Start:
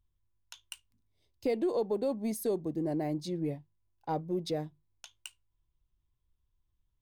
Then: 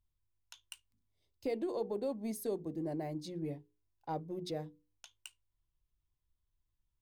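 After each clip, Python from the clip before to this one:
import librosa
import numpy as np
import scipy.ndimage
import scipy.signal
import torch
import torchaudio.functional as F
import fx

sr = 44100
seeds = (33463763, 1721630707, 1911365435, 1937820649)

y = fx.hum_notches(x, sr, base_hz=60, count=8)
y = y * librosa.db_to_amplitude(-5.0)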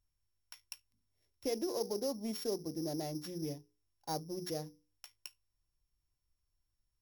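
y = np.r_[np.sort(x[:len(x) // 8 * 8].reshape(-1, 8), axis=1).ravel(), x[len(x) // 8 * 8:]]
y = fx.bass_treble(y, sr, bass_db=-1, treble_db=3)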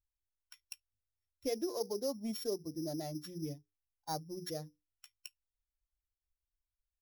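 y = fx.bin_expand(x, sr, power=1.5)
y = y * librosa.db_to_amplitude(1.5)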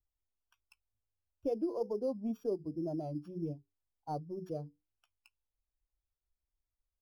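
y = scipy.signal.lfilter(np.full(23, 1.0 / 23), 1.0, x)
y = fx.wow_flutter(y, sr, seeds[0], rate_hz=2.1, depth_cents=75.0)
y = y * librosa.db_to_amplitude(3.0)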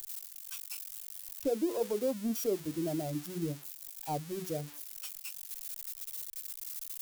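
y = x + 0.5 * 10.0 ** (-33.5 / 20.0) * np.diff(np.sign(x), prepend=np.sign(x[:1]))
y = y * librosa.db_to_amplitude(3.0)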